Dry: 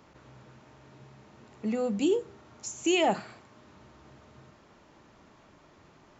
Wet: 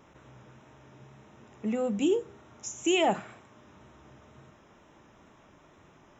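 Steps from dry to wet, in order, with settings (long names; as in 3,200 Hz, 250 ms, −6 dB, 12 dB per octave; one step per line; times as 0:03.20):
Butterworth band-reject 4,500 Hz, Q 3.6
tape wow and flutter 26 cents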